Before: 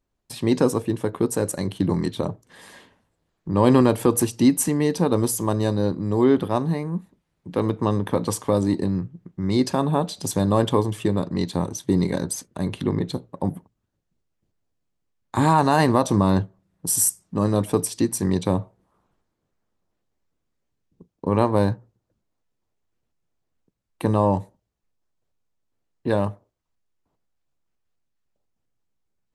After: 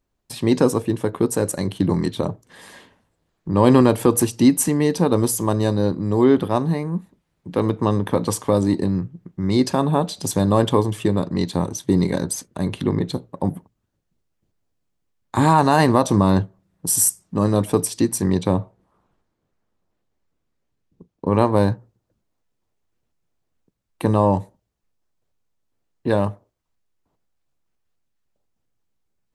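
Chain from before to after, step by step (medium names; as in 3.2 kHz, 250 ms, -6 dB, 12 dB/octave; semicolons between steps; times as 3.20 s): 18.22–21.33 s: treble shelf 6.3 kHz -6 dB; trim +2.5 dB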